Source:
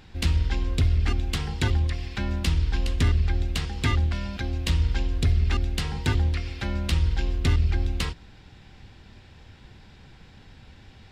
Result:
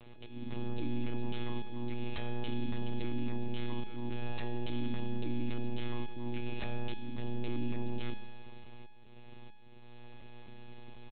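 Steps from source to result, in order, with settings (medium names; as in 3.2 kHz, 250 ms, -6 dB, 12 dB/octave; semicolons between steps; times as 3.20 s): compression 2:1, threshold -30 dBFS, peak gain reduction 7.5 dB; bass shelf 88 Hz -7 dB; frequency shift +210 Hz; peaking EQ 1.6 kHz -6.5 dB 0.63 oct; comb 3.8 ms, depth 61%; slow attack 443 ms; monotone LPC vocoder at 8 kHz 120 Hz; peak limiter -24.5 dBFS, peak gain reduction 10 dB; feedback comb 210 Hz, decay 0.94 s, mix 80%; trim +9.5 dB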